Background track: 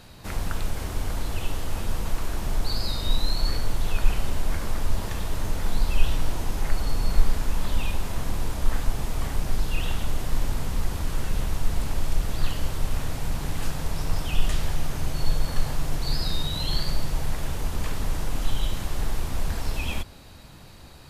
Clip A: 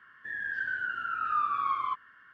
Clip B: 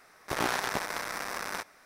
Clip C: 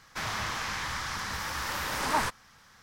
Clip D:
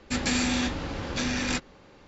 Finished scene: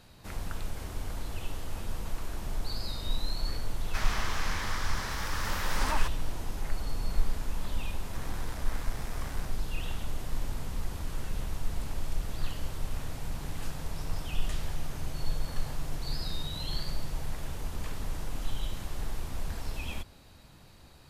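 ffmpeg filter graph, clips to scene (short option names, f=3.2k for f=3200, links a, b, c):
-filter_complex "[0:a]volume=-8dB[a];[3:a]alimiter=limit=-19dB:level=0:latency=1:release=365[b];[2:a]acompressor=threshold=-33dB:ratio=6:attack=3.2:release=140:knee=1:detection=peak[c];[b]atrim=end=2.82,asetpts=PTS-STARTPTS,volume=-2.5dB,afade=t=in:d=0.004:c=hsin,afade=t=out:st=2.816:d=0.004:c=hsin,adelay=3780[d];[c]atrim=end=1.85,asetpts=PTS-STARTPTS,volume=-9dB,afade=t=in:d=0.004:c=hsin,afade=t=out:st=1.846:d=0.004:c=hsin,adelay=7850[e];[a][d][e]amix=inputs=3:normalize=0"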